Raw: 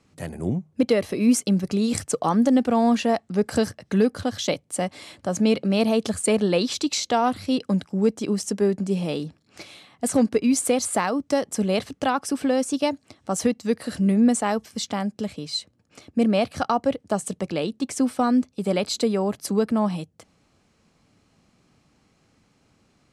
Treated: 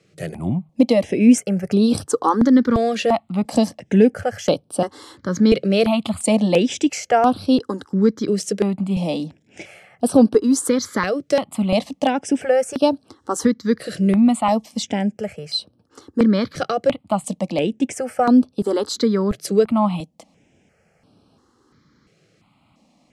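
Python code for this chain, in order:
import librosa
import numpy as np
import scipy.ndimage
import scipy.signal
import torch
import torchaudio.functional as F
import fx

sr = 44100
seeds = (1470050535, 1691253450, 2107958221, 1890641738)

y = fx.highpass(x, sr, hz=150.0, slope=6)
y = fx.high_shelf(y, sr, hz=4500.0, db=-8.5)
y = fx.phaser_held(y, sr, hz=2.9, low_hz=250.0, high_hz=6900.0)
y = F.gain(torch.from_numpy(y), 8.5).numpy()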